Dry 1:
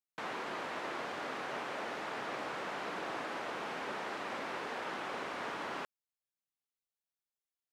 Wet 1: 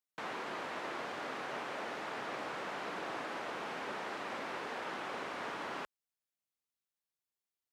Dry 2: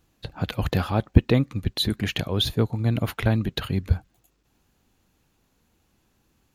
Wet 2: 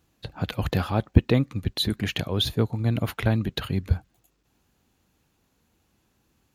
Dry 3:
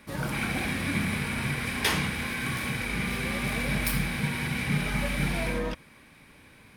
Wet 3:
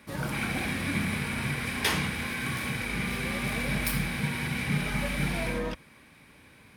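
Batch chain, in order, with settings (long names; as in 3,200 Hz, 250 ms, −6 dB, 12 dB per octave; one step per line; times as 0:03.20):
high-pass filter 41 Hz
level −1 dB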